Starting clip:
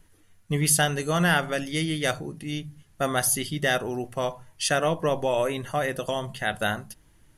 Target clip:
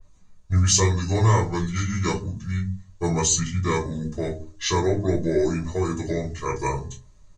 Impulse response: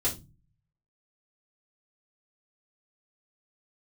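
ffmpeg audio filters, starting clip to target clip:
-filter_complex "[0:a]bandreject=f=165.4:t=h:w=4,bandreject=f=330.8:t=h:w=4,bandreject=f=496.2:t=h:w=4,bandreject=f=661.6:t=h:w=4,bandreject=f=827:t=h:w=4,bandreject=f=992.4:t=h:w=4,bandreject=f=1.1578k:t=h:w=4,bandreject=f=1.3232k:t=h:w=4,bandreject=f=1.4886k:t=h:w=4,bandreject=f=1.654k:t=h:w=4,bandreject=f=1.8194k:t=h:w=4,bandreject=f=1.9848k:t=h:w=4,bandreject=f=2.1502k:t=h:w=4,bandreject=f=2.3156k:t=h:w=4,bandreject=f=2.481k:t=h:w=4,bandreject=f=2.6464k:t=h:w=4,bandreject=f=2.8118k:t=h:w=4,bandreject=f=2.9772k:t=h:w=4,bandreject=f=3.1426k:t=h:w=4,asetrate=27781,aresample=44100,atempo=1.5874[a];[1:a]atrim=start_sample=2205,afade=t=out:st=0.43:d=0.01,atrim=end_sample=19404,asetrate=57330,aresample=44100[b];[a][b]afir=irnorm=-1:irlink=0,adynamicequalizer=threshold=0.0141:dfrequency=2900:dqfactor=0.7:tfrequency=2900:tqfactor=0.7:attack=5:release=100:ratio=0.375:range=3.5:mode=boostabove:tftype=highshelf,volume=-7dB"

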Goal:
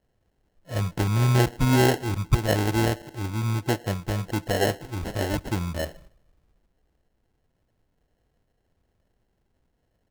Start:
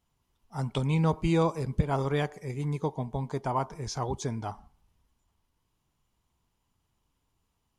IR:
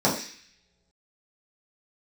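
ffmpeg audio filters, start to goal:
-af "asetrate=33957,aresample=44100,acrusher=samples=37:mix=1:aa=0.000001,volume=5dB"

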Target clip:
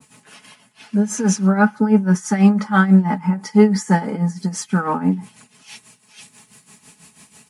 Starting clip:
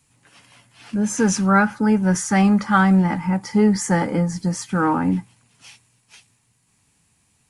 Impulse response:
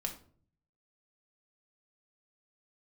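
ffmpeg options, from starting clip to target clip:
-af "highpass=130,aecho=1:1:4.7:0.68,areverse,acompressor=mode=upward:threshold=-33dB:ratio=2.5,areverse,tremolo=f=6.1:d=0.75,adynamicequalizer=threshold=0.0158:dfrequency=1500:dqfactor=0.7:tfrequency=1500:tqfactor=0.7:attack=5:release=100:ratio=0.375:range=3.5:mode=cutabove:tftype=highshelf,volume=2.5dB"

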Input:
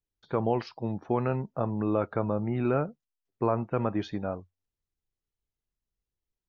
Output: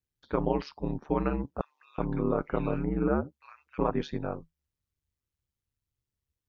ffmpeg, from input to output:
-filter_complex "[0:a]aeval=exprs='val(0)*sin(2*PI*72*n/s)':c=same,equalizer=f=680:w=3.2:g=-5,asettb=1/sr,asplit=3[a][b][c];[a]atrim=end=1.614[d];[b]atrim=start=1.61:end=3.91,asetpts=PTS-STARTPTS,afade=t=in:d=0.004:c=qsin,afade=t=out:st=2.296:d=0.004:c=qsin,acrossover=split=1900[e][f];[e]adelay=370[g];[g][f]amix=inputs=2:normalize=0,atrim=end_sample=101430[h];[c]atrim=start=3.906[i];[d][h]acrossfade=d=0.004:c1=hsin:c2=qsin[j];[j][i]acrossfade=d=0.004:c1=qsin:c2=hsin,volume=3dB"

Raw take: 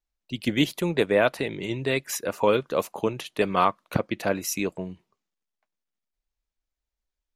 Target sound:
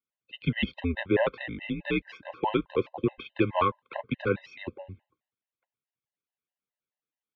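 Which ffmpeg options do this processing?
-af "highpass=f=170:t=q:w=0.5412,highpass=f=170:t=q:w=1.307,lowpass=f=3.5k:t=q:w=0.5176,lowpass=f=3.5k:t=q:w=0.7071,lowpass=f=3.5k:t=q:w=1.932,afreqshift=-88,afftfilt=real='re*gt(sin(2*PI*4.7*pts/sr)*(1-2*mod(floor(b*sr/1024/520),2)),0)':imag='im*gt(sin(2*PI*4.7*pts/sr)*(1-2*mod(floor(b*sr/1024/520),2)),0)':win_size=1024:overlap=0.75"

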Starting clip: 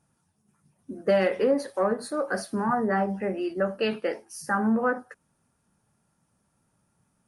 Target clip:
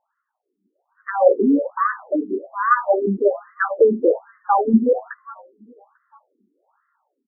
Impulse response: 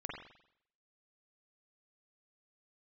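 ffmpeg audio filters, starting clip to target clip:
-filter_complex "[0:a]dynaudnorm=f=610:g=3:m=12dB,asplit=4[a][b][c][d];[b]adelay=422,afreqshift=-130,volume=-22.5dB[e];[c]adelay=844,afreqshift=-260,volume=-28.7dB[f];[d]adelay=1266,afreqshift=-390,volume=-34.9dB[g];[a][e][f][g]amix=inputs=4:normalize=0,afftfilt=real='re*between(b*sr/1024,290*pow(1500/290,0.5+0.5*sin(2*PI*1.2*pts/sr))/1.41,290*pow(1500/290,0.5+0.5*sin(2*PI*1.2*pts/sr))*1.41)':imag='im*between(b*sr/1024,290*pow(1500/290,0.5+0.5*sin(2*PI*1.2*pts/sr))/1.41,290*pow(1500/290,0.5+0.5*sin(2*PI*1.2*pts/sr))*1.41)':win_size=1024:overlap=0.75,volume=4dB"

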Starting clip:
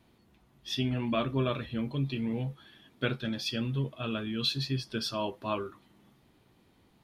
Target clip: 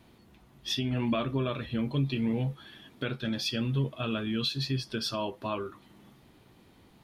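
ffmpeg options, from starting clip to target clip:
-af "alimiter=level_in=2dB:limit=-24dB:level=0:latency=1:release=383,volume=-2dB,volume=6dB"

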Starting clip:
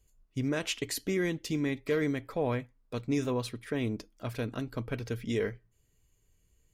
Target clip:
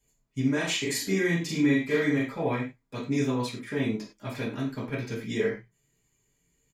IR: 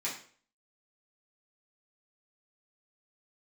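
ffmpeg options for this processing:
-filter_complex "[0:a]asplit=3[a][b][c];[a]afade=t=out:st=0.58:d=0.02[d];[b]asplit=2[e][f];[f]adelay=41,volume=-2dB[g];[e][g]amix=inputs=2:normalize=0,afade=t=in:st=0.58:d=0.02,afade=t=out:st=2.24:d=0.02[h];[c]afade=t=in:st=2.24:d=0.02[i];[d][h][i]amix=inputs=3:normalize=0[j];[1:a]atrim=start_sample=2205,afade=t=out:st=0.17:d=0.01,atrim=end_sample=7938[k];[j][k]afir=irnorm=-1:irlink=0"

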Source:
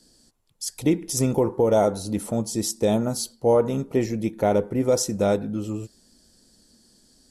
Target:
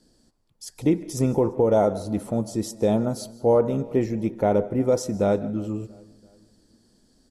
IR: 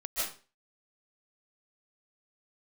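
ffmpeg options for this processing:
-filter_complex "[0:a]highshelf=f=2.6k:g=-10.5,asplit=2[a][b];[b]adelay=340,lowpass=f=2.8k:p=1,volume=-24dB,asplit=2[c][d];[d]adelay=340,lowpass=f=2.8k:p=1,volume=0.49,asplit=2[e][f];[f]adelay=340,lowpass=f=2.8k:p=1,volume=0.49[g];[a][c][e][g]amix=inputs=4:normalize=0,asplit=2[h][i];[1:a]atrim=start_sample=2205[j];[i][j]afir=irnorm=-1:irlink=0,volume=-23.5dB[k];[h][k]amix=inputs=2:normalize=0"

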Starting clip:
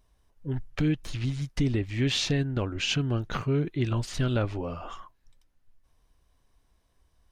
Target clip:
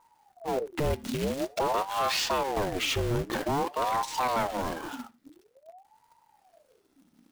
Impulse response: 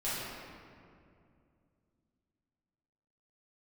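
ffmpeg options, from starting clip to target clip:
-filter_complex "[0:a]asoftclip=type=hard:threshold=-28dB,acrusher=bits=2:mode=log:mix=0:aa=0.000001,asplit=2[a][b];[1:a]atrim=start_sample=2205,atrim=end_sample=4410[c];[b][c]afir=irnorm=-1:irlink=0,volume=-21dB[d];[a][d]amix=inputs=2:normalize=0,aeval=exprs='val(0)*sin(2*PI*580*n/s+580*0.6/0.49*sin(2*PI*0.49*n/s))':c=same,volume=3dB"

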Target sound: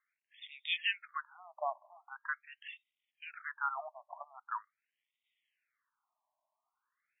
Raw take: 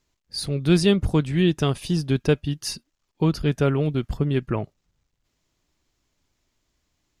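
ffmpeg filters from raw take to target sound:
-af "afftfilt=real='re*between(b*sr/1024,800*pow(2700/800,0.5+0.5*sin(2*PI*0.43*pts/sr))/1.41,800*pow(2700/800,0.5+0.5*sin(2*PI*0.43*pts/sr))*1.41)':imag='im*between(b*sr/1024,800*pow(2700/800,0.5+0.5*sin(2*PI*0.43*pts/sr))/1.41,800*pow(2700/800,0.5+0.5*sin(2*PI*0.43*pts/sr))*1.41)':win_size=1024:overlap=0.75,volume=-1dB"

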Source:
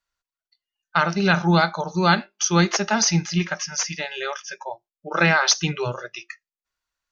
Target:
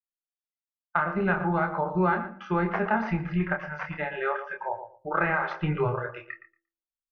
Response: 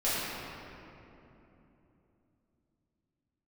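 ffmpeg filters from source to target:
-filter_complex "[0:a]agate=range=-33dB:threshold=-45dB:ratio=3:detection=peak,lowpass=f=2k:w=0.5412,lowpass=f=2k:w=1.3066,aemphasis=mode=reproduction:type=50fm,bandreject=f=47.93:t=h:w=4,bandreject=f=95.86:t=h:w=4,bandreject=f=143.79:t=h:w=4,bandreject=f=191.72:t=h:w=4,bandreject=f=239.65:t=h:w=4,bandreject=f=287.58:t=h:w=4,bandreject=f=335.51:t=h:w=4,bandreject=f=383.44:t=h:w=4,bandreject=f=431.37:t=h:w=4,bandreject=f=479.3:t=h:w=4,bandreject=f=527.23:t=h:w=4,bandreject=f=575.16:t=h:w=4,bandreject=f=623.09:t=h:w=4,asubboost=boost=6.5:cutoff=73,acompressor=threshold=-23dB:ratio=10,asplit=2[a][b];[b]adelay=27,volume=-5.5dB[c];[a][c]amix=inputs=2:normalize=0,asplit=2[d][e];[e]adelay=116,lowpass=f=1.5k:p=1,volume=-9.5dB,asplit=2[f][g];[g]adelay=116,lowpass=f=1.5k:p=1,volume=0.19,asplit=2[h][i];[i]adelay=116,lowpass=f=1.5k:p=1,volume=0.19[j];[d][f][h][j]amix=inputs=4:normalize=0,volume=1dB"

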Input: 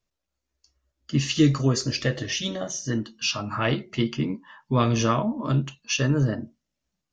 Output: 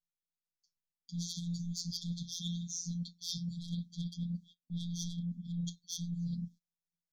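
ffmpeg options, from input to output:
-af "asoftclip=type=tanh:threshold=-20dB,afftfilt=real='hypot(re,im)*cos(PI*b)':imag='0':win_size=1024:overlap=0.75,afftfilt=real='re*(1-between(b*sr/4096,250,3200))':imag='im*(1-between(b*sr/4096,250,3200))':win_size=4096:overlap=0.75,agate=range=-18dB:threshold=-57dB:ratio=16:detection=peak,areverse,acompressor=threshold=-40dB:ratio=12,areverse,volume=5dB"

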